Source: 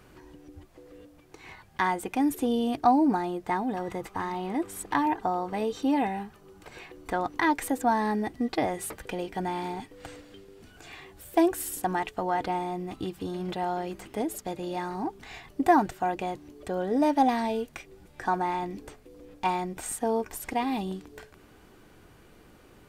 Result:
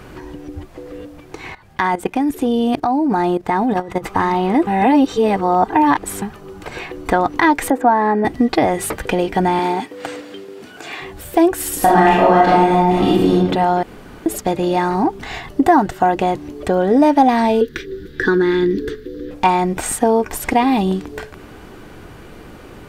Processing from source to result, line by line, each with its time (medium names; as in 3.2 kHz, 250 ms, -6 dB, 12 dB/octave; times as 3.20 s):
1.47–4.04 s: level held to a coarse grid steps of 16 dB
4.67–6.22 s: reverse
7.70–8.25 s: three-band isolator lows -15 dB, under 240 Hz, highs -16 dB, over 2.2 kHz
9.59–11.02 s: high-pass 230 Hz
11.77–13.33 s: reverb throw, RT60 1 s, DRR -8 dB
13.83–14.26 s: room tone
15.23–16.26 s: band-stop 2.4 kHz
17.61–19.31 s: FFT filter 190 Hz 0 dB, 450 Hz +9 dB, 640 Hz -27 dB, 960 Hz -17 dB, 1.7 kHz +7 dB, 2.4 kHz -9 dB, 3.6 kHz +6 dB, 8.6 kHz -11 dB, 15 kHz 0 dB
whole clip: treble shelf 4.5 kHz -6.5 dB; compression 2:1, threshold -30 dBFS; loudness maximiser +18 dB; trim -1 dB